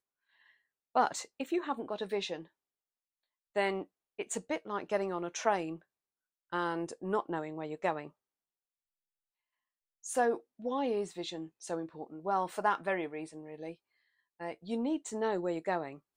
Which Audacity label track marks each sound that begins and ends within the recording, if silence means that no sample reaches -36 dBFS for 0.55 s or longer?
0.950000	2.360000	sound
3.560000	5.740000	sound
6.520000	8.070000	sound
10.060000	13.710000	sound